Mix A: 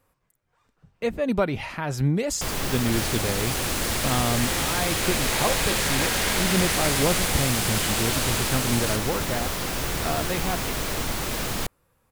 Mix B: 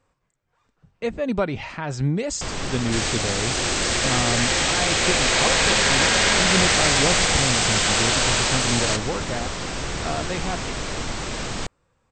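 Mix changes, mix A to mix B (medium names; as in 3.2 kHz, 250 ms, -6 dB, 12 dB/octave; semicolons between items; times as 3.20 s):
second sound +8.0 dB; master: add brick-wall FIR low-pass 8.5 kHz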